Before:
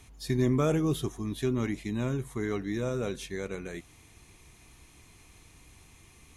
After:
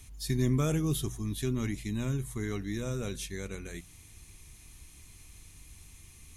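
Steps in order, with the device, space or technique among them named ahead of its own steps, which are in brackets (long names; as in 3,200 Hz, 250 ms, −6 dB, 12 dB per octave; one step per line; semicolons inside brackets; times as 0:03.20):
smiley-face EQ (low-shelf EQ 110 Hz +7.5 dB; parametric band 630 Hz −7.5 dB 2.8 octaves; high-shelf EQ 7,100 Hz +9 dB)
mains-hum notches 60/120/180 Hz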